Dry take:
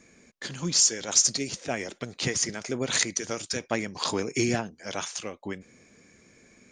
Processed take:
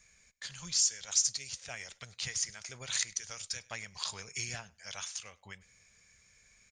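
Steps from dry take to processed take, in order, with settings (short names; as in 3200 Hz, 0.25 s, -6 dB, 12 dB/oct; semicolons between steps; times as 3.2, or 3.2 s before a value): passive tone stack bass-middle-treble 10-0-10; in parallel at -1 dB: compressor, threshold -40 dBFS, peak gain reduction 21.5 dB; on the sum: low shelf 120 Hz +8.5 dB; feedback echo 0.1 s, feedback 16%, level -24 dB; gain -7 dB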